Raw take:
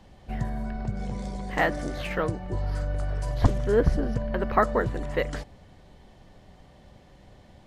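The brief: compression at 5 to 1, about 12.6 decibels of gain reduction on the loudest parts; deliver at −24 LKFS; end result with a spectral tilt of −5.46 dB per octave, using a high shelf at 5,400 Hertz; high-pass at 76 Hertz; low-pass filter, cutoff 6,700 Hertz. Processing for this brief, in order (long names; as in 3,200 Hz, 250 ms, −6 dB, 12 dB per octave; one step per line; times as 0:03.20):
high-pass filter 76 Hz
low-pass filter 6,700 Hz
high-shelf EQ 5,400 Hz +7 dB
downward compressor 5 to 1, threshold −31 dBFS
level +12 dB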